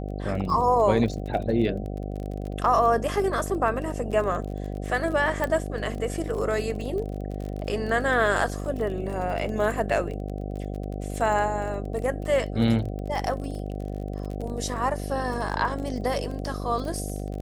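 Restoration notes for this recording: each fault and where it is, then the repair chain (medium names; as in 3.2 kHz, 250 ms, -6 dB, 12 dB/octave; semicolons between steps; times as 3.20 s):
buzz 50 Hz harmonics 15 -32 dBFS
crackle 29 per s -32 dBFS
5.44 s: pop -14 dBFS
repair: de-click; de-hum 50 Hz, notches 15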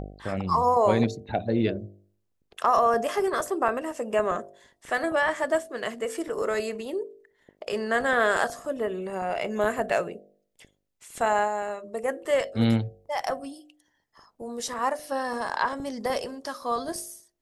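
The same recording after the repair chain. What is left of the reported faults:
nothing left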